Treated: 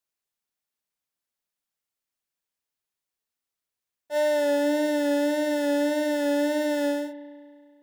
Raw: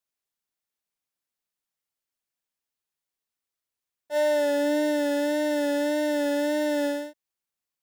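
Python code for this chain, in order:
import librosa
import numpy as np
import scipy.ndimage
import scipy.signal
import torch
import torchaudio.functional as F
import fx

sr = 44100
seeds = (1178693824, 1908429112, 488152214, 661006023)

y = fx.rev_spring(x, sr, rt60_s=2.1, pass_ms=(31,), chirp_ms=65, drr_db=14.0)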